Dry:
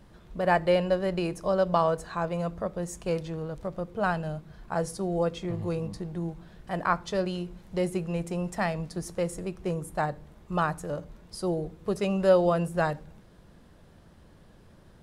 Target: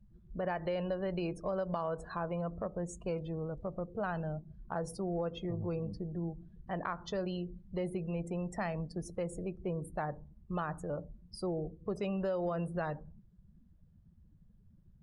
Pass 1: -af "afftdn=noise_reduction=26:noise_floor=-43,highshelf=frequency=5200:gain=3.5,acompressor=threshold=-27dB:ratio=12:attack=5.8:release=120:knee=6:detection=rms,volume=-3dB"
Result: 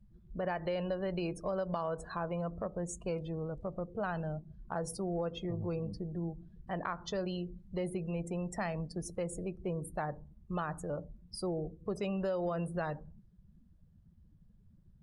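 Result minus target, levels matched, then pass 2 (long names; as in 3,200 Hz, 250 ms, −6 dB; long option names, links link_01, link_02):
8,000 Hz band +5.5 dB
-af "afftdn=noise_reduction=26:noise_floor=-43,highshelf=frequency=5200:gain=-4.5,acompressor=threshold=-27dB:ratio=12:attack=5.8:release=120:knee=6:detection=rms,volume=-3dB"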